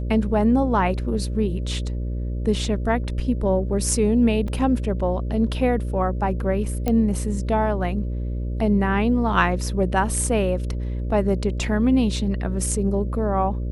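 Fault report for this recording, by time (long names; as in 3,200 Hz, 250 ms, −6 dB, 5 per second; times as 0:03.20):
mains buzz 60 Hz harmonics 10 −26 dBFS
0:04.48: drop-out 2.7 ms
0:06.88: click −10 dBFS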